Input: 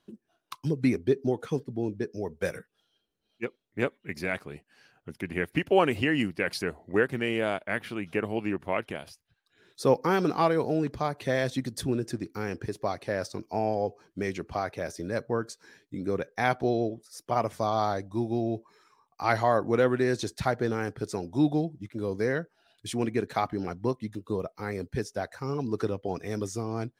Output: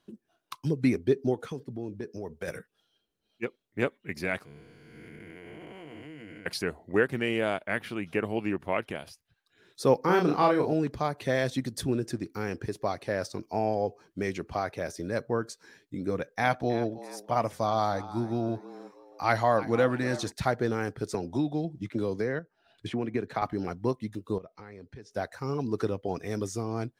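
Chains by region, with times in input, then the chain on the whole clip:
1.34–2.48 HPF 46 Hz + compressor 3:1, threshold -33 dBFS
4.45–6.46 time blur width 0.454 s + ripple EQ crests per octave 1.8, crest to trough 10 dB + compressor, threshold -43 dBFS
10.02–10.73 high shelf 5200 Hz -5 dB + doubler 34 ms -4 dB
16.1–20.32 notch 390 Hz, Q 5.2 + frequency-shifting echo 0.32 s, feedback 36%, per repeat +93 Hz, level -16 dB
21.14–23.42 high shelf 6900 Hz -11.5 dB + random-step tremolo 4 Hz, depth 70% + three-band squash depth 100%
24.38–25.11 LPF 5000 Hz + compressor 4:1, threshold -44 dBFS
whole clip: dry

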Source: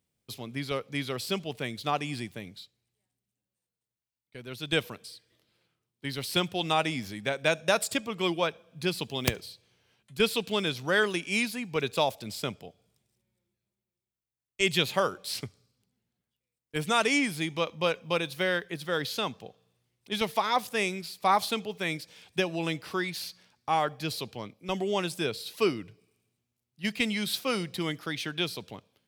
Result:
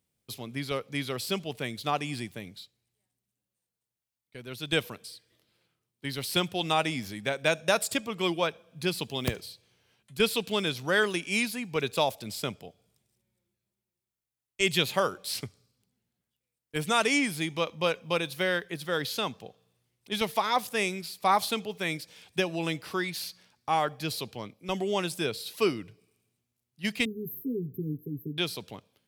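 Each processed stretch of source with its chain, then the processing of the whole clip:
27.05–28.38 brick-wall FIR band-stop 480–12000 Hz + comb 7.5 ms, depth 77%
whole clip: de-esser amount 45%; bell 12000 Hz +3.5 dB 1 oct

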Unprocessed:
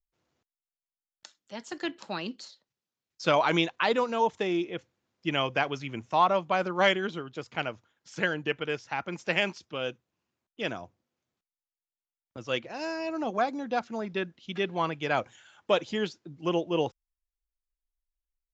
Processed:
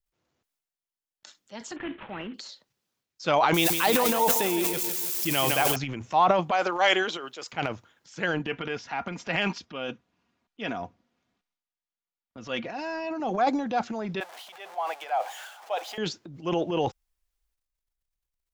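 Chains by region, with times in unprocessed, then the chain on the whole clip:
1.76–2.34 CVSD 16 kbps + dynamic EQ 880 Hz, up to -4 dB, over -46 dBFS, Q 0.84
3.54–5.76 switching spikes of -27.5 dBFS + high shelf 5800 Hz +10.5 dB + feedback echo 0.16 s, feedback 56%, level -10 dB
6.51–7.53 HPF 450 Hz + high shelf 5300 Hz +8 dB
8.39–13.2 Bessel low-pass 4100 Hz + notch 480 Hz, Q 6.4 + comb 4.2 ms, depth 45%
14.2–15.98 zero-crossing step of -37.5 dBFS + ladder high-pass 650 Hz, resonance 65%
whole clip: dynamic EQ 780 Hz, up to +7 dB, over -45 dBFS, Q 5.6; transient shaper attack -2 dB, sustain +10 dB

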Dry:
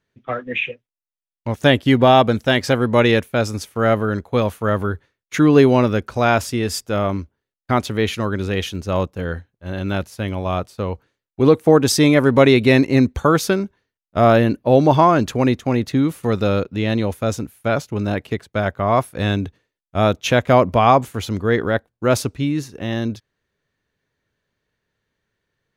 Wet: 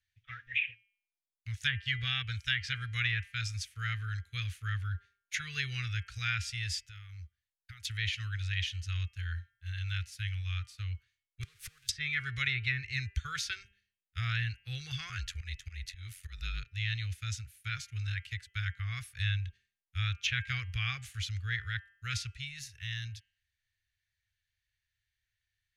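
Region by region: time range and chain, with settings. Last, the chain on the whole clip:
6.79–7.85 bell 300 Hz -6.5 dB 0.32 oct + compressor, threshold -30 dBFS
11.43–11.89 zero-crossing step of -17.5 dBFS + bell 970 Hz +9.5 dB 0.52 oct + flipped gate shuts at -9 dBFS, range -28 dB
15.09–16.66 auto swell 0.153 s + ring modulator 46 Hz
whole clip: inverse Chebyshev band-stop 180–1000 Hz, stop band 40 dB; treble ducked by the level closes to 440 Hz, closed at -13.5 dBFS; de-hum 200 Hz, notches 16; gain -6 dB

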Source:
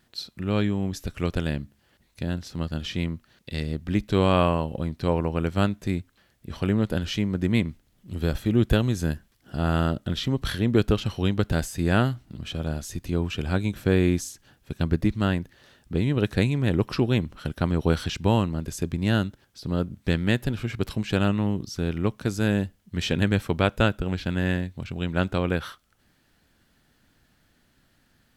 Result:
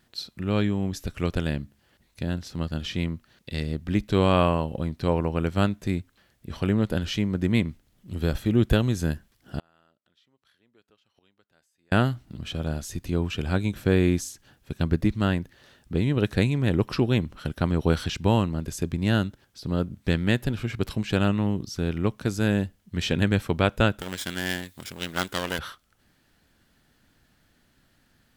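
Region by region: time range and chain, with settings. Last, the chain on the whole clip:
9.59–11.92 HPF 940 Hz 6 dB/oct + high shelf 6000 Hz -5.5 dB + flipped gate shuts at -32 dBFS, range -32 dB
23.99–25.59 minimum comb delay 0.57 ms + RIAA curve recording
whole clip: dry

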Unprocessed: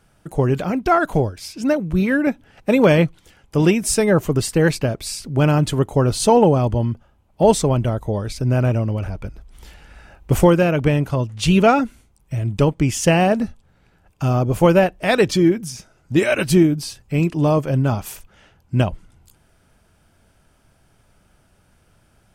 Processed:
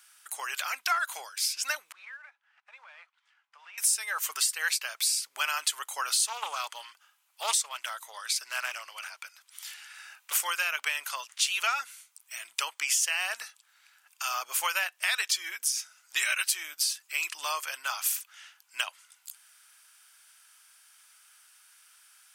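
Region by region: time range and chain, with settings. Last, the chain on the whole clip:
1.92–3.78 CVSD 64 kbps + ladder band-pass 1000 Hz, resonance 25% + compressor 4:1, threshold -41 dBFS
6.25–10.33 HPF 410 Hz 6 dB/oct + Doppler distortion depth 0.21 ms
whole clip: HPF 1200 Hz 24 dB/oct; high shelf 3600 Hz +12 dB; compressor 5:1, threshold -25 dBFS

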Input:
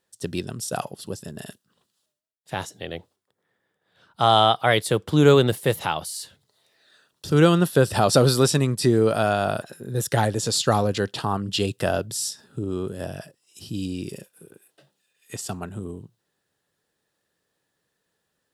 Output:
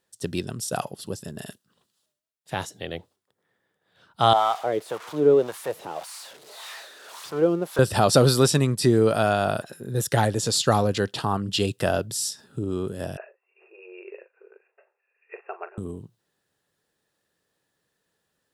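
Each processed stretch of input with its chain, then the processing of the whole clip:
4.33–7.79 switching spikes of -10.5 dBFS + wah 1.8 Hz 380–1100 Hz, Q 2
13.17–15.78 brick-wall FIR band-pass 360–2800 Hz + doubler 41 ms -13 dB
whole clip: dry

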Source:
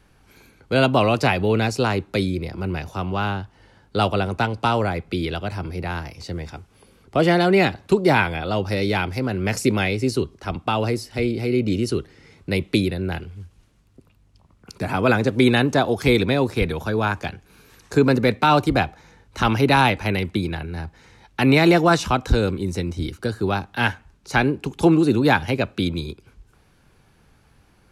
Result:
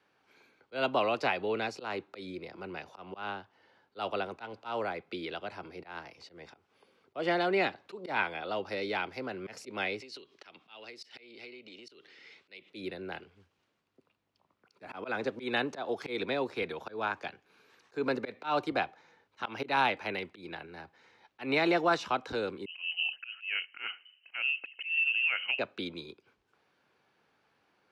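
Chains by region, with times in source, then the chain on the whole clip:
10–12.7 compressor 16:1, threshold -32 dBFS + weighting filter D
22.66–25.59 EQ curve 210 Hz 0 dB, 340 Hz +9 dB, 6900 Hz -14 dB + compressor, threshold -16 dBFS + inverted band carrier 3000 Hz
whole clip: three-band isolator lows -12 dB, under 330 Hz, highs -17 dB, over 5200 Hz; auto swell 0.15 s; HPF 150 Hz 12 dB/oct; gain -9 dB

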